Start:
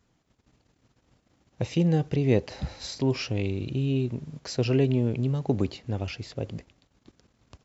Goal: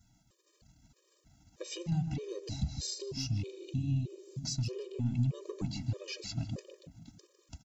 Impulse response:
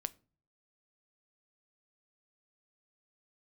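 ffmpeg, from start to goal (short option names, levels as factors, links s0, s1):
-filter_complex "[0:a]asoftclip=type=tanh:threshold=0.133,bass=f=250:g=6,treble=f=4000:g=14,acompressor=threshold=0.0398:ratio=5,asettb=1/sr,asplit=3[s0][s1][s2];[s0]atrim=end=2.254[s3];[s1]atrim=start=2.25:end=4.99,asetpts=PTS-STARTPTS,afade=t=in:d=0.004:c=qsin,afade=t=out:st=2.736:d=0.004:c=qsin,equalizer=f=1300:w=0.68:g=-10.5[s4];[s2]atrim=start=4.986[s5];[s3][s4]acrossfade=d=0.004:c1=hsin:c2=qsin[s6];[s6][s5]acrossfade=d=0.004:c1=qsin:c2=hsin,asplit=2[s7][s8];[s8]adelay=153,lowpass=f=1300:p=1,volume=0.473,asplit=2[s9][s10];[s10]adelay=153,lowpass=f=1300:p=1,volume=0.54,asplit=2[s11][s12];[s12]adelay=153,lowpass=f=1300:p=1,volume=0.54,asplit=2[s13][s14];[s14]adelay=153,lowpass=f=1300:p=1,volume=0.54,asplit=2[s15][s16];[s16]adelay=153,lowpass=f=1300:p=1,volume=0.54,asplit=2[s17][s18];[s18]adelay=153,lowpass=f=1300:p=1,volume=0.54,asplit=2[s19][s20];[s20]adelay=153,lowpass=f=1300:p=1,volume=0.54[s21];[s7][s9][s11][s13][s15][s17][s19][s21]amix=inputs=8:normalize=0,flanger=delay=1.6:depth=3.9:regen=-65:speed=1.5:shape=sinusoidal,afftfilt=real='re*gt(sin(2*PI*1.6*pts/sr)*(1-2*mod(floor(b*sr/1024/320),2)),0)':imag='im*gt(sin(2*PI*1.6*pts/sr)*(1-2*mod(floor(b*sr/1024/320),2)),0)':win_size=1024:overlap=0.75,volume=1.33"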